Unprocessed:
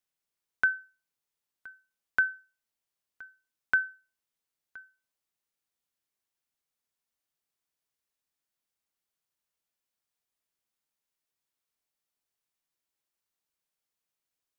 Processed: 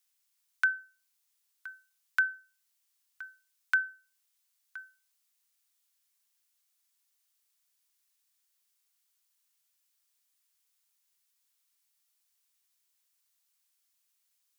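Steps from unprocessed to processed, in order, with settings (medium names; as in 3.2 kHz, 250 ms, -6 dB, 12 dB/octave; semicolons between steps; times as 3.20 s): high-pass 810 Hz 24 dB/octave; treble shelf 2.6 kHz +12 dB; in parallel at 0 dB: compression, threshold -39 dBFS, peak gain reduction 19.5 dB; on the sum: trim -5.5 dB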